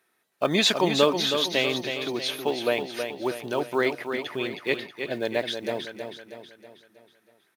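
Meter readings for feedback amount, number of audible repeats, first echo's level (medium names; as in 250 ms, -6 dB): 48%, 5, -7.0 dB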